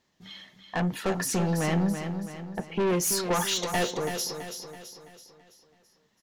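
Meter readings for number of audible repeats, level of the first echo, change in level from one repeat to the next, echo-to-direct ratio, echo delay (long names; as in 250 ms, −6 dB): 5, −8.0 dB, −6.5 dB, −7.0 dB, 331 ms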